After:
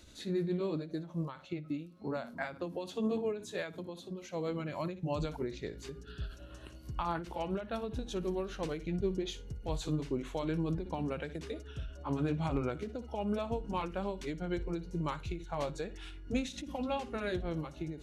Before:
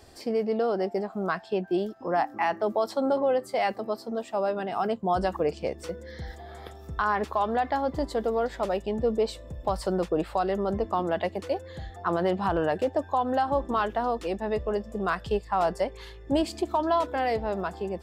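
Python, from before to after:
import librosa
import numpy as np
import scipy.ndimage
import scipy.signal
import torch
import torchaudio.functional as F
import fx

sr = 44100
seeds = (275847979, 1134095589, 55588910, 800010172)

y = fx.pitch_heads(x, sr, semitones=-3.5)
y = fx.peak_eq(y, sr, hz=670.0, db=-11.5, octaves=2.0)
y = fx.room_flutter(y, sr, wall_m=10.0, rt60_s=0.21)
y = fx.end_taper(y, sr, db_per_s=120.0)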